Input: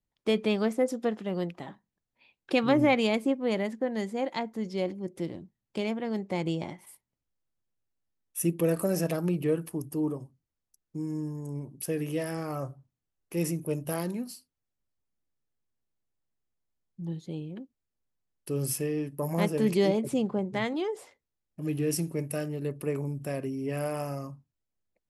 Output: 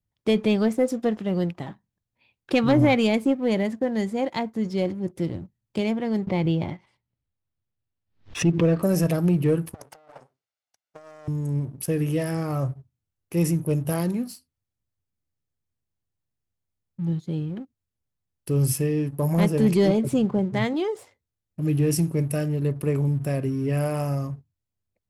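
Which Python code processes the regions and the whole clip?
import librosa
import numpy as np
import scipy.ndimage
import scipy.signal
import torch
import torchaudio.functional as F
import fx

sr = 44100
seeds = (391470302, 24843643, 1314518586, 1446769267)

y = fx.chain(x, sr, fx.lowpass(hz=4300.0, slope=24),
    fx.pre_swell(db_per_s=140.0), at=(6.27, 8.83))
y = fx.chain(y, sr, fx.lower_of_two(delay_ms=1.4),
    fx.bandpass_edges(low_hz=640.0, high_hz=5900.0),
    fx.over_compress(threshold_db=-49.0, ratio=-1.0), at=(9.74, 11.28))
y = fx.peak_eq(y, sr, hz=93.0, db=14.0, octaves=1.4)
y = fx.leveller(y, sr, passes=1)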